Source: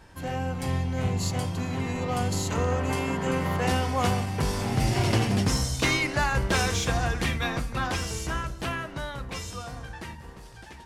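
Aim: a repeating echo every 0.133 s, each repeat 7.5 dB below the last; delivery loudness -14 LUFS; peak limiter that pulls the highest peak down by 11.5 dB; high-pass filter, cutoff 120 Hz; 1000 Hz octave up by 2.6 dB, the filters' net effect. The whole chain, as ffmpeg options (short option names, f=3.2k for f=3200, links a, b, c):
-af "highpass=120,equalizer=f=1k:t=o:g=3.5,alimiter=limit=-21.5dB:level=0:latency=1,aecho=1:1:133|266|399|532|665:0.422|0.177|0.0744|0.0312|0.0131,volume=16.5dB"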